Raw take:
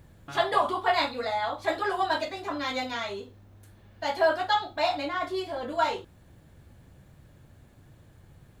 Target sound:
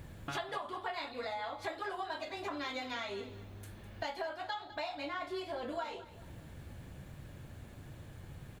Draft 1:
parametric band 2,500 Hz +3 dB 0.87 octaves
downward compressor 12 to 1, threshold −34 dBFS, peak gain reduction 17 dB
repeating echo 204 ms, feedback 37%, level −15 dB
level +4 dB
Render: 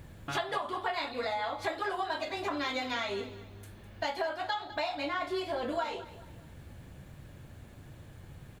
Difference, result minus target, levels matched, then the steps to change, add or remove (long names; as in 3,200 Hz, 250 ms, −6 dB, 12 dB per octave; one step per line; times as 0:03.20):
downward compressor: peak gain reduction −6 dB
change: downward compressor 12 to 1, threshold −40.5 dBFS, peak gain reduction 23 dB